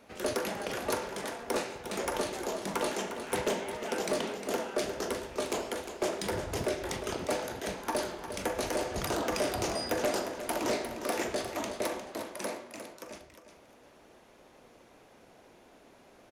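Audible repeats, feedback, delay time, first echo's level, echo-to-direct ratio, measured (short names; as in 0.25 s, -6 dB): 2, 22%, 0.355 s, -10.0 dB, -10.0 dB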